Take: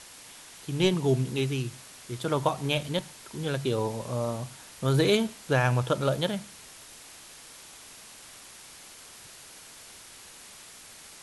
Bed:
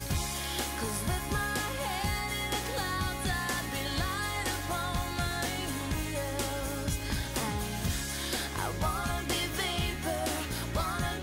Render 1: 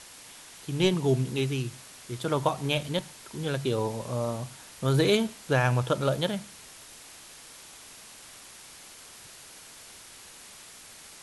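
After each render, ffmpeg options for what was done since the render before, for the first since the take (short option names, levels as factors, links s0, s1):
-af anull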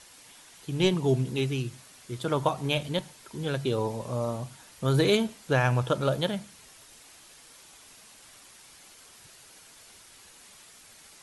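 -af "afftdn=nr=6:nf=-49"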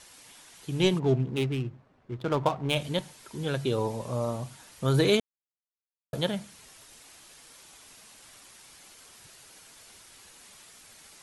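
-filter_complex "[0:a]asplit=3[s0][s1][s2];[s0]afade=t=out:st=0.98:d=0.02[s3];[s1]adynamicsmooth=sensitivity=6:basefreq=770,afade=t=in:st=0.98:d=0.02,afade=t=out:st=2.74:d=0.02[s4];[s2]afade=t=in:st=2.74:d=0.02[s5];[s3][s4][s5]amix=inputs=3:normalize=0,asplit=3[s6][s7][s8];[s6]atrim=end=5.2,asetpts=PTS-STARTPTS,afade=t=out:st=5.196:d=0.004:c=hsin[s9];[s7]atrim=start=5.2:end=6.13,asetpts=PTS-STARTPTS,volume=0[s10];[s8]atrim=start=6.13,asetpts=PTS-STARTPTS,afade=t=in:d=0.004:c=hsin[s11];[s9][s10][s11]concat=n=3:v=0:a=1"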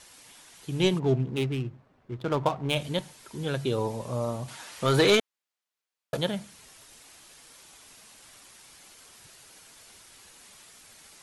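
-filter_complex "[0:a]asettb=1/sr,asplit=3[s0][s1][s2];[s0]atrim=end=4.484[s3];[s1]atrim=start=4.48:end=6.17,asetpts=PTS-STARTPTS,afade=t=in:d=0.004:c=qsin,afade=t=out:st=1.686:d=0.004:c=qsin,asplit=2[s4][s5];[s5]highpass=f=720:p=1,volume=6.31,asoftclip=type=tanh:threshold=0.282[s6];[s4][s6]amix=inputs=2:normalize=0,lowpass=f=4600:p=1,volume=0.501[s7];[s2]atrim=start=6.166[s8];[s3][s7]acrossfade=d=0.004:c1=hsin:c2=qsin[s9];[s9][s8]acrossfade=d=0.004:c1=qsin:c2=hsin"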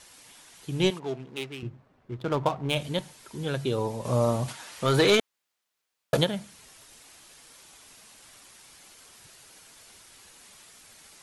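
-filter_complex "[0:a]asettb=1/sr,asplit=3[s0][s1][s2];[s0]atrim=end=0.904[s3];[s1]atrim=start=0.9:end=1.63,asetpts=PTS-STARTPTS,afade=t=in:d=0.004:c=qsin,afade=t=out:st=0.726:d=0.004:c=qsin,highpass=f=810:p=1[s4];[s2]atrim=start=1.626[s5];[s3][s4]acrossfade=d=0.004:c1=hsin:c2=qsin[s6];[s6][s5]acrossfade=d=0.004:c1=qsin:c2=hsin,asplit=3[s7][s8][s9];[s7]afade=t=out:st=4.04:d=0.02[s10];[s8]acontrast=60,afade=t=in:st=4.04:d=0.02,afade=t=out:st=4.51:d=0.02[s11];[s9]afade=t=in:st=4.51:d=0.02[s12];[s10][s11][s12]amix=inputs=3:normalize=0,asplit=3[s13][s14][s15];[s13]afade=t=out:st=5.19:d=0.02[s16];[s14]acontrast=86,afade=t=in:st=5.19:d=0.02,afade=t=out:st=6.23:d=0.02[s17];[s15]afade=t=in:st=6.23:d=0.02[s18];[s16][s17][s18]amix=inputs=3:normalize=0"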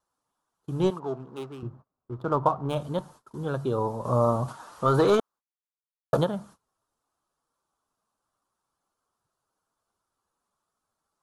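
-af "agate=range=0.0562:threshold=0.00447:ratio=16:detection=peak,highshelf=f=1600:t=q:w=3:g=-9.5"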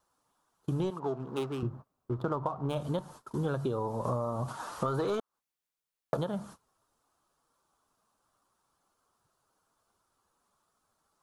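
-filter_complex "[0:a]asplit=2[s0][s1];[s1]alimiter=limit=0.106:level=0:latency=1,volume=0.891[s2];[s0][s2]amix=inputs=2:normalize=0,acompressor=threshold=0.0398:ratio=16"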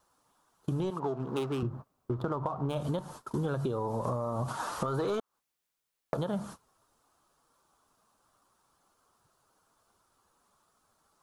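-filter_complex "[0:a]asplit=2[s0][s1];[s1]alimiter=level_in=1.33:limit=0.0631:level=0:latency=1,volume=0.75,volume=0.794[s2];[s0][s2]amix=inputs=2:normalize=0,acompressor=threshold=0.0398:ratio=6"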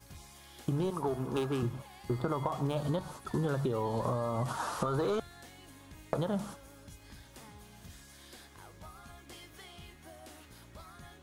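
-filter_complex "[1:a]volume=0.106[s0];[0:a][s0]amix=inputs=2:normalize=0"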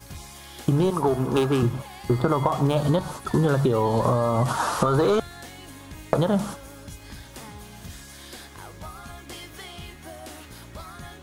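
-af "volume=3.55"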